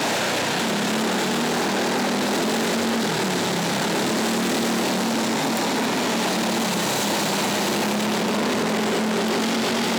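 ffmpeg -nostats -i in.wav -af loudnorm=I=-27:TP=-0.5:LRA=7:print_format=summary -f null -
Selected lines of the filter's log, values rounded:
Input Integrated:    -21.9 LUFS
Input True Peak:     -10.8 dBTP
Input LRA:             0.1 LU
Input Threshold:     -31.9 LUFS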